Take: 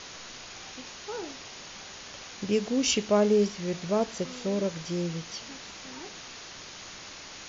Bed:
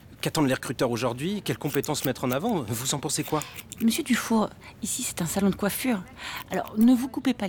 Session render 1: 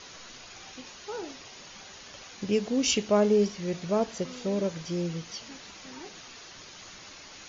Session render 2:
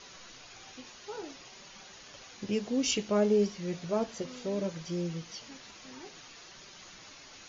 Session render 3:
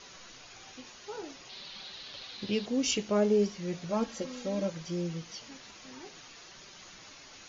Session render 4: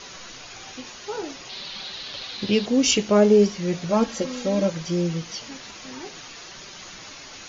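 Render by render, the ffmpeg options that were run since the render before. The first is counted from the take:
-af "afftdn=nr=6:nf=-45"
-af "flanger=delay=5.1:depth=3.2:regen=-49:speed=0.6:shape=sinusoidal"
-filter_complex "[0:a]asettb=1/sr,asplit=3[a][b][c];[a]atrim=end=1.494[d];[b]atrim=start=1.49:end=2.66,asetpts=PTS-STARTPTS,afade=t=in:d=0.004:c=qsin,afade=t=out:st=1.166:d=0.004:c=qsin,lowpass=f=4k:t=q:w=4.4[e];[c]atrim=start=2.656[f];[d][e]acrossfade=d=0.004:c1=hsin:c2=qsin[g];[g][f]acrossfade=d=0.004:c1=qsin:c2=hsin,asettb=1/sr,asplit=3[h][i][j];[h]atrim=end=3.904[k];[i]atrim=start=3.9:end=4.7,asetpts=PTS-STARTPTS,afade=t=in:d=0.004:c=qsin,afade=t=out:st=0.796:d=0.004:c=qsin,aecho=1:1:3.7:0.65,atrim=end_sample=35280[l];[j]atrim=start=4.696[m];[k][l]acrossfade=d=0.004:c1=hsin:c2=qsin[n];[n][m]acrossfade=d=0.004:c1=qsin:c2=hsin"
-af "volume=10dB"

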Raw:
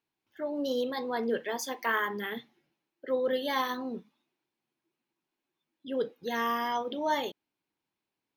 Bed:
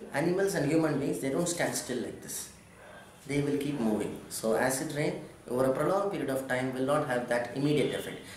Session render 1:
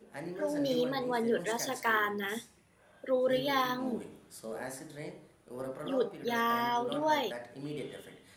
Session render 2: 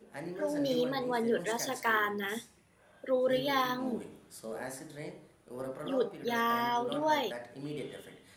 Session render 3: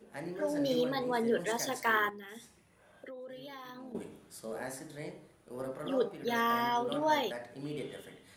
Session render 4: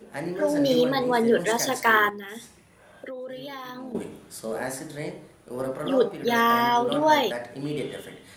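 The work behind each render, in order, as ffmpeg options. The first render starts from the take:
-filter_complex "[1:a]volume=-12.5dB[a];[0:a][a]amix=inputs=2:normalize=0"
-af anull
-filter_complex "[0:a]asettb=1/sr,asplit=3[a][b][c];[a]atrim=end=2.094[d];[b]atrim=start=2.09:end=3.95,asetpts=PTS-STARTPTS,afade=t=in:d=0.004:c=qsin,afade=t=out:st=1.856:d=0.004:c=qsin,acompressor=threshold=-43dB:ratio=12:attack=3.2:release=140:knee=1:detection=peak[e];[c]atrim=start=3.946[f];[d][e]acrossfade=d=0.004:c1=hsin:c2=qsin[g];[g][f]acrossfade=d=0.004:c1=qsin:c2=hsin"
-af "volume=9.5dB"

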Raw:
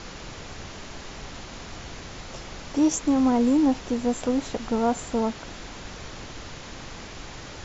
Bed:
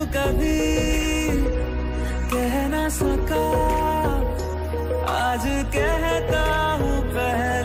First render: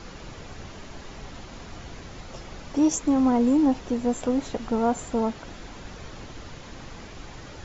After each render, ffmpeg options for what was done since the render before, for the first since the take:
-af "afftdn=nr=6:nf=-41"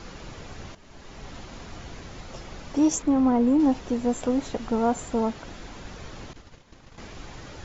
-filter_complex "[0:a]asettb=1/sr,asplit=3[a][b][c];[a]atrim=end=3.024[d];[b]atrim=start=3.02:end=3.6,asetpts=PTS-STARTPTS,afade=t=in:d=0.004:c=qsin,afade=t=out:st=0.576:d=0.004:c=qsin,lowpass=f=2.5k:p=1[e];[c]atrim=start=3.596[f];[d][e]acrossfade=d=0.004:c1=hsin:c2=qsin[g];[g][f]acrossfade=d=0.004:c1=qsin:c2=hsin,asettb=1/sr,asplit=3[h][i][j];[h]atrim=end=6.334[k];[i]atrim=start=6.33:end=6.98,asetpts=PTS-STARTPTS,afade=t=in:d=0.004:c=qsin,afade=t=out:st=0.646:d=0.004:c=qsin,agate=range=-33dB:threshold=-33dB:ratio=3:release=100:detection=peak[l];[j]atrim=start=6.976[m];[k][l]acrossfade=d=0.004:c1=hsin:c2=qsin[n];[n][m]acrossfade=d=0.004:c1=qsin:c2=hsin,asplit=2[o][p];[o]atrim=end=0.75,asetpts=PTS-STARTPTS,afade=t=out:st=0.746:d=0.004:c=hsin:silence=0.199526[q];[p]atrim=start=0.75,asetpts=PTS-STARTPTS,afade=t=in:d=0.57:silence=0.199526[r];[q][r]concat=n=2:v=0:a=1"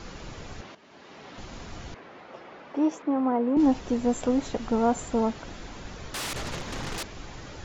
-filter_complex "[0:a]asettb=1/sr,asplit=3[a][b][c];[a]atrim=end=0.614[d];[b]atrim=start=0.61:end=1.38,asetpts=PTS-STARTPTS,afade=t=in:d=0.004:c=qsin,afade=t=out:st=0.766:d=0.004:c=qsin,highpass=230,lowpass=4.5k[e];[c]atrim=start=1.376[f];[d][e]acrossfade=d=0.004:c1=hsin:c2=qsin[g];[g][f]acrossfade=d=0.004:c1=qsin:c2=hsin,asettb=1/sr,asplit=3[h][i][j];[h]atrim=end=1.944[k];[i]atrim=start=1.94:end=3.57,asetpts=PTS-STARTPTS,afade=t=in:d=0.004:c=qsin,afade=t=out:st=1.626:d=0.004:c=qsin,highpass=330,lowpass=2.2k[l];[j]atrim=start=3.566[m];[k][l]acrossfade=d=0.004:c1=hsin:c2=qsin[n];[n][m]acrossfade=d=0.004:c1=qsin:c2=hsin,asettb=1/sr,asplit=3[o][p][q];[o]atrim=end=6.144[r];[p]atrim=start=6.14:end=7.03,asetpts=PTS-STARTPTS,afade=t=in:d=0.004:c=qsin,afade=t=out:st=0.886:d=0.004:c=qsin,aeval=exprs='0.0335*sin(PI/2*7.94*val(0)/0.0335)':c=same[s];[q]atrim=start=7.026[t];[r][s]acrossfade=d=0.004:c1=hsin:c2=qsin[u];[u][t]acrossfade=d=0.004:c1=qsin:c2=hsin"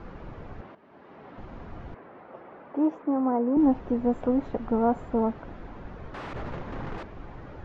-af "lowpass=1.4k"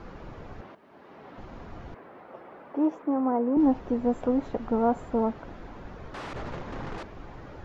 -af "bass=f=250:g=-2,treble=f=4k:g=8"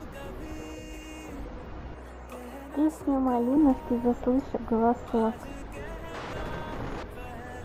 -filter_complex "[1:a]volume=-20.5dB[a];[0:a][a]amix=inputs=2:normalize=0"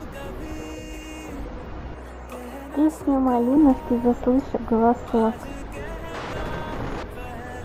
-af "volume=5.5dB"

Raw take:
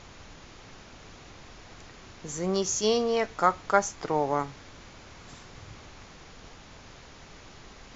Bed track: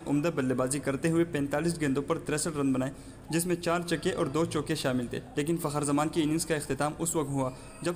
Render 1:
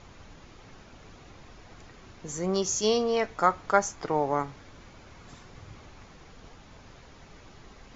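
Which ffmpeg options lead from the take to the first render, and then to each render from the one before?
-af "afftdn=nr=6:nf=-50"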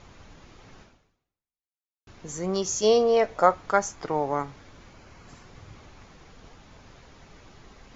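-filter_complex "[0:a]asettb=1/sr,asplit=3[a][b][c];[a]atrim=end=2.824[d];[b]atrim=start=2.82:end=3.54,asetpts=PTS-STARTPTS,afade=t=in:d=0.004:c=qsin,afade=t=out:st=0.716:d=0.004:c=qsin,equalizer=f=570:t=o:w=0.77:g=10[e];[c]atrim=start=3.536[f];[d][e]acrossfade=d=0.004:c1=hsin:c2=qsin[g];[g][f]acrossfade=d=0.004:c1=qsin:c2=hsin,asettb=1/sr,asplit=3[h][i][j];[h]atrim=end=4.934[k];[i]atrim=start=4.93:end=5.45,asetpts=PTS-STARTPTS,afade=t=in:d=0.004:c=qsin,afade=t=out:st=0.516:d=0.004:c=qsin,bandreject=f=3.6k:w=10[l];[j]atrim=start=5.446[m];[k][l]acrossfade=d=0.004:c1=hsin:c2=qsin[n];[n][m]acrossfade=d=0.004:c1=qsin:c2=hsin,asplit=2[o][p];[o]atrim=end=2.07,asetpts=PTS-STARTPTS,afade=t=out:st=0.82:d=1.25:c=exp[q];[p]atrim=start=2.07,asetpts=PTS-STARTPTS,afade=t=in:d=0.004:c=hsin[r];[q][r]concat=n=2:v=0:a=1"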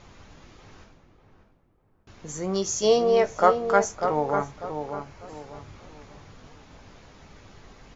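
-filter_complex "[0:a]asplit=2[a][b];[b]adelay=20,volume=-10.5dB[c];[a][c]amix=inputs=2:normalize=0,asplit=2[d][e];[e]adelay=596,lowpass=f=1.2k:p=1,volume=-6dB,asplit=2[f][g];[g]adelay=596,lowpass=f=1.2k:p=1,volume=0.37,asplit=2[h][i];[i]adelay=596,lowpass=f=1.2k:p=1,volume=0.37,asplit=2[j][k];[k]adelay=596,lowpass=f=1.2k:p=1,volume=0.37[l];[f][h][j][l]amix=inputs=4:normalize=0[m];[d][m]amix=inputs=2:normalize=0"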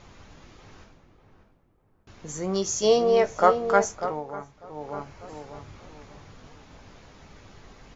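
-filter_complex "[0:a]asplit=3[a][b][c];[a]atrim=end=4.24,asetpts=PTS-STARTPTS,afade=t=out:st=3.89:d=0.35:silence=0.281838[d];[b]atrim=start=4.24:end=4.66,asetpts=PTS-STARTPTS,volume=-11dB[e];[c]atrim=start=4.66,asetpts=PTS-STARTPTS,afade=t=in:d=0.35:silence=0.281838[f];[d][e][f]concat=n=3:v=0:a=1"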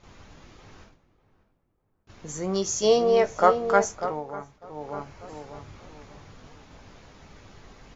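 -af "agate=range=-8dB:threshold=-51dB:ratio=16:detection=peak"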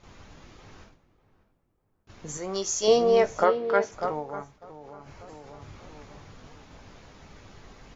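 -filter_complex "[0:a]asettb=1/sr,asplit=3[a][b][c];[a]atrim=end=2.374[d];[b]atrim=start=2.37:end=2.88,asetpts=PTS-STARTPTS,afade=t=in:d=0.004:c=qsin,afade=t=out:st=0.506:d=0.004:c=qsin,equalizer=f=140:w=0.61:g=-11.5[e];[c]atrim=start=2.876[f];[d][e]acrossfade=d=0.004:c1=hsin:c2=qsin[g];[g][f]acrossfade=d=0.004:c1=qsin:c2=hsin,asplit=3[h][i][j];[h]afade=t=out:st=3.43:d=0.02[k];[i]highpass=160,equalizer=f=180:t=q:w=4:g=-9,equalizer=f=750:t=q:w=4:g=-9,equalizer=f=1.2k:t=q:w=4:g=-7,lowpass=f=4.3k:w=0.5412,lowpass=f=4.3k:w=1.3066,afade=t=in:st=3.43:d=0.02,afade=t=out:st=3.91:d=0.02[l];[j]afade=t=in:st=3.91:d=0.02[m];[k][l][m]amix=inputs=3:normalize=0,asettb=1/sr,asplit=3[n][o][p];[n]atrim=end=4.514[q];[o]atrim=start=4.51:end=5.62,asetpts=PTS-STARTPTS,afade=t=in:d=0.004:c=qsin,afade=t=out:st=1.106:d=0.004:c=qsin,acompressor=threshold=-40dB:ratio=6:attack=3.2:release=140:knee=1:detection=peak[r];[p]atrim=start=5.616[s];[q][r]acrossfade=d=0.004:c1=hsin:c2=qsin[t];[t][s]acrossfade=d=0.004:c1=qsin:c2=hsin"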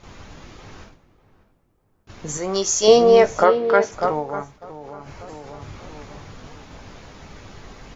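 -af "volume=8dB,alimiter=limit=-2dB:level=0:latency=1"

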